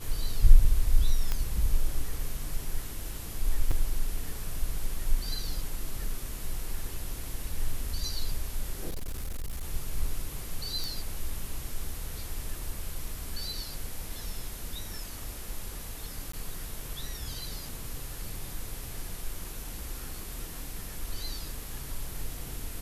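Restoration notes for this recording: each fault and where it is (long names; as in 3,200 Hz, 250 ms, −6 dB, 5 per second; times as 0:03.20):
0:01.32: click −14 dBFS
0:03.71: drop-out 4.8 ms
0:08.89–0:09.67: clipping −30 dBFS
0:10.84: click
0:16.32–0:16.33: drop-out 14 ms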